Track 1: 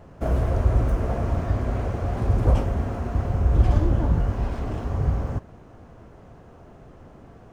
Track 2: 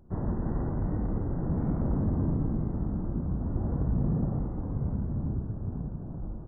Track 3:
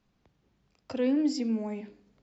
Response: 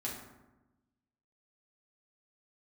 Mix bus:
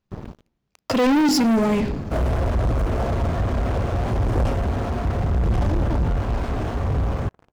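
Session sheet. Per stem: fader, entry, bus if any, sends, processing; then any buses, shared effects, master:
-14.5 dB, 1.90 s, no send, peaking EQ 1 kHz +2.5 dB 2.9 oct
-16.5 dB, 0.00 s, no send, logarithmic tremolo 0.55 Hz, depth 32 dB
+3.0 dB, 0.00 s, no send, none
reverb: none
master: waveshaping leveller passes 5

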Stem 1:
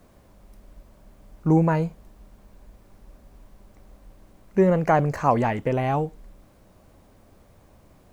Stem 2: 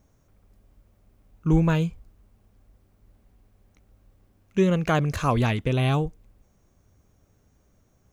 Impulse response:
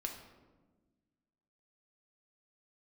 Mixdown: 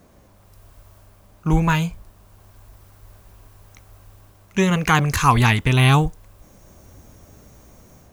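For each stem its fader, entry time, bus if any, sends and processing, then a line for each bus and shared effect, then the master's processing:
+2.5 dB, 0.00 s, no send, high-pass 44 Hz 12 dB/octave
-1.5 dB, 0.00 s, polarity flipped, no send, level rider gain up to 14.5 dB; treble shelf 5.8 kHz +9 dB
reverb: none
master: none

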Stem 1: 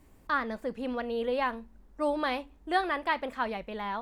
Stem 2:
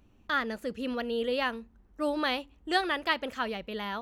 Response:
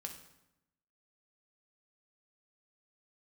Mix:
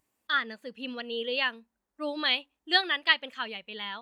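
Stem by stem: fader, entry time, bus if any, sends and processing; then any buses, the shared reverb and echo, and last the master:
-13.5 dB, 0.00 s, no send, Bessel high-pass 690 Hz, order 2
-3.5 dB, 0.00 s, no send, frequency weighting D; spectral contrast expander 1.5:1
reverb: none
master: tone controls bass +4 dB, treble +6 dB

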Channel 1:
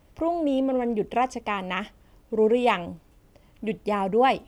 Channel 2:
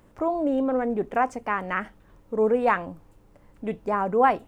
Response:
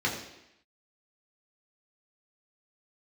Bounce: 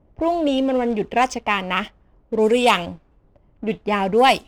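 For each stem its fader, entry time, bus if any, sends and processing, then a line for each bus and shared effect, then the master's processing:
+3.0 dB, 0.00 s, no send, treble shelf 3.3 kHz +6 dB
-8.5 dB, 0.00 s, polarity flipped, no send, LFO low-pass saw up 2.1 Hz 460–4300 Hz; resonant high shelf 2.5 kHz +14 dB, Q 1.5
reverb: none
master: level-controlled noise filter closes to 740 Hz, open at -15 dBFS; treble shelf 3.3 kHz +8.5 dB; waveshaping leveller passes 1

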